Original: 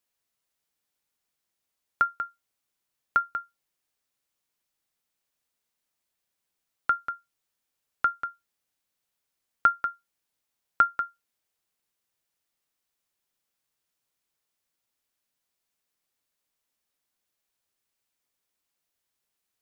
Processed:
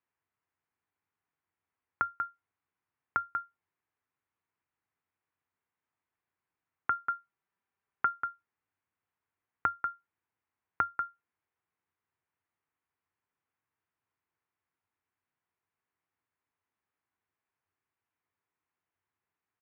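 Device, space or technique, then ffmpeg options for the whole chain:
bass amplifier: -filter_complex "[0:a]acompressor=threshold=-28dB:ratio=4,highpass=77,equalizer=f=92:t=q:w=4:g=9,equalizer=f=210:t=q:w=4:g=-4,equalizer=f=570:t=q:w=4:g=-8,equalizer=f=1k:t=q:w=4:g=3,lowpass=f=2.2k:w=0.5412,lowpass=f=2.2k:w=1.3066,asplit=3[a][b][c];[a]afade=t=out:st=6.9:d=0.02[d];[b]aecho=1:1:5.1:0.38,afade=t=in:st=6.9:d=0.02,afade=t=out:st=8.22:d=0.02[e];[c]afade=t=in:st=8.22:d=0.02[f];[d][e][f]amix=inputs=3:normalize=0"

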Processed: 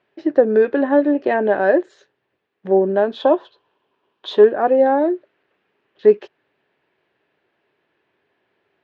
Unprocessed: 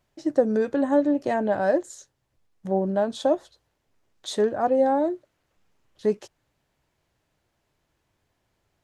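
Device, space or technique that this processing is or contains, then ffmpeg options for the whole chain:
kitchen radio: -filter_complex "[0:a]asettb=1/sr,asplit=3[a][b][c];[a]atrim=end=3.214[d];[b]atrim=start=3.21:end=4.44,asetpts=PTS-STARTPTS,afade=t=in:d=0.004:c=qsin,afade=t=out:st=1.226:d=0.004:c=qsin,equalizer=f=1k:t=o:w=0.33:g=11,equalizer=f=2k:t=o:w=0.33:g=-8,equalizer=f=3.15k:t=o:w=0.33:g=6[e];[c]atrim=start=4.436[f];[d][e]acrossfade=d=0.004:c1=hsin:c2=qsin[g];[g][f]acrossfade=d=0.004:c1=qsin:c2=hsin,highpass=230,equalizer=f=400:t=q:w=4:g=9,equalizer=f=1.7k:t=q:w=4:g=6,equalizer=f=2.6k:t=q:w=4:g=4,lowpass=f=3.6k:w=0.5412,lowpass=f=3.6k:w=1.3066,volume=5dB"

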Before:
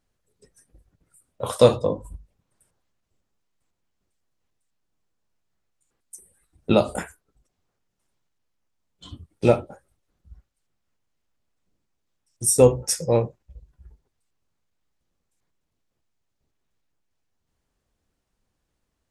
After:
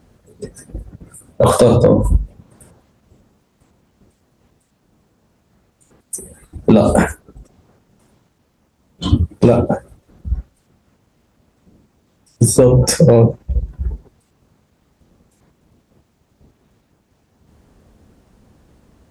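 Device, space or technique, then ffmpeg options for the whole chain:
mastering chain: -filter_complex "[0:a]highpass=50,equalizer=f=220:t=o:w=0.42:g=3.5,acrossover=split=2000|4000[a][b][c];[a]acompressor=threshold=-20dB:ratio=4[d];[b]acompressor=threshold=-44dB:ratio=4[e];[c]acompressor=threshold=-35dB:ratio=4[f];[d][e][f]amix=inputs=3:normalize=0,acompressor=threshold=-25dB:ratio=3,asoftclip=type=tanh:threshold=-19dB,tiltshelf=f=1.1k:g=6,asoftclip=type=hard:threshold=-17dB,alimiter=level_in=23.5dB:limit=-1dB:release=50:level=0:latency=1,volume=-1dB"

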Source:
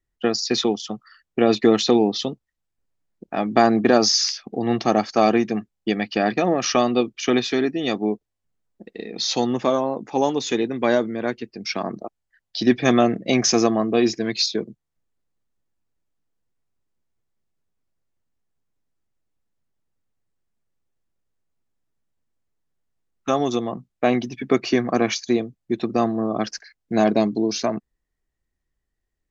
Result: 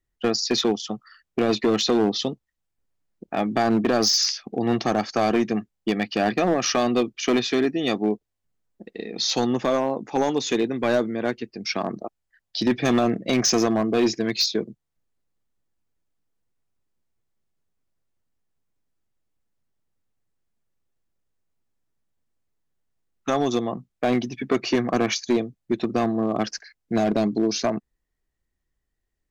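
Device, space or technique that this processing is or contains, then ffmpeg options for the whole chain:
limiter into clipper: -af "alimiter=limit=-9dB:level=0:latency=1:release=46,asoftclip=type=hard:threshold=-14dB"

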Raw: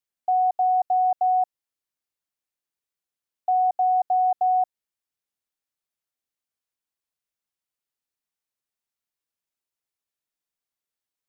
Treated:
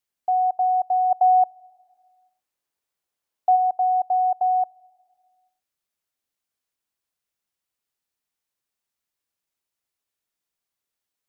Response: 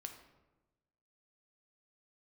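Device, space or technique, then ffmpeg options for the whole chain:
ducked reverb: -filter_complex "[0:a]asplit=3[a][b][c];[1:a]atrim=start_sample=2205[d];[b][d]afir=irnorm=-1:irlink=0[e];[c]apad=whole_len=497808[f];[e][f]sidechaincompress=threshold=-41dB:ratio=8:attack=16:release=404,volume=0dB[g];[a][g]amix=inputs=2:normalize=0,asplit=3[h][i][j];[h]afade=t=out:st=1.1:d=0.02[k];[i]equalizer=f=730:w=0.73:g=4.5,afade=t=in:st=1.1:d=0.02,afade=t=out:st=3.55:d=0.02[l];[j]afade=t=in:st=3.55:d=0.02[m];[k][l][m]amix=inputs=3:normalize=0"

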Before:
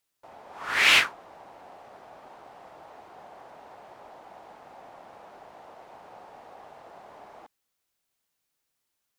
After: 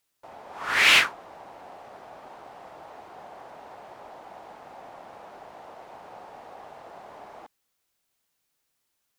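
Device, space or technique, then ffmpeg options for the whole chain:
parallel distortion: -filter_complex "[0:a]asplit=2[a][b];[b]asoftclip=type=hard:threshold=-24dB,volume=-7dB[c];[a][c]amix=inputs=2:normalize=0"

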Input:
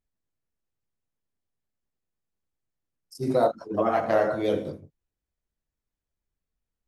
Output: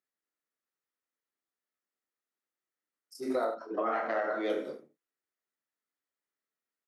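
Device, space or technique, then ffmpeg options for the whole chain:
laptop speaker: -filter_complex "[0:a]asettb=1/sr,asplit=3[a][b][c];[a]atrim=end=3.484[d];[b]atrim=start=3.48:end=4.5,asetpts=PTS-STARTPTS,afade=t=in:d=0.004:c=qsin,afade=t=out:st=1.016:d=0.004:c=qsin,lowpass=5k[e];[c]atrim=start=4.496[f];[d][e]acrossfade=d=0.004:c1=hsin:c2=qsin[g];[g][f]acrossfade=d=0.004:c1=qsin:c2=hsin,highpass=f=260:w=0.5412,highpass=f=260:w=1.3066,equalizer=f=1.3k:t=o:w=0.33:g=8.5,equalizer=f=1.9k:t=o:w=0.37:g=8,aecho=1:1:27|74:0.531|0.237,alimiter=limit=-16dB:level=0:latency=1:release=122,volume=-5.5dB"

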